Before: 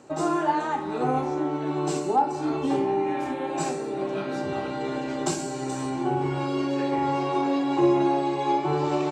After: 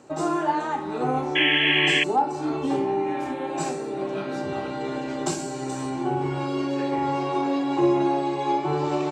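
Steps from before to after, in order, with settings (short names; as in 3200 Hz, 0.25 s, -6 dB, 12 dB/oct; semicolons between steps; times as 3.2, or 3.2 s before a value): painted sound noise, 1.35–2.04, 1600–3400 Hz -21 dBFS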